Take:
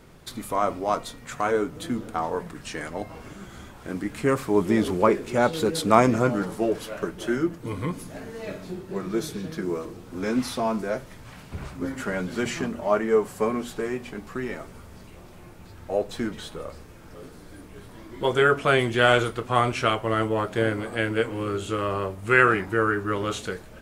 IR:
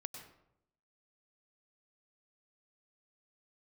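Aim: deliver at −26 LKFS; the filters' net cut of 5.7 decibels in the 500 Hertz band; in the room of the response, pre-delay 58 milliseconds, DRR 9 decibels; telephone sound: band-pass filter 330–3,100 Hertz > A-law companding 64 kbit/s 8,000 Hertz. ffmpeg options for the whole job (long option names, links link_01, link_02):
-filter_complex "[0:a]equalizer=frequency=500:width_type=o:gain=-6,asplit=2[link_01][link_02];[1:a]atrim=start_sample=2205,adelay=58[link_03];[link_02][link_03]afir=irnorm=-1:irlink=0,volume=-6dB[link_04];[link_01][link_04]amix=inputs=2:normalize=0,highpass=330,lowpass=3100,volume=2.5dB" -ar 8000 -c:a pcm_alaw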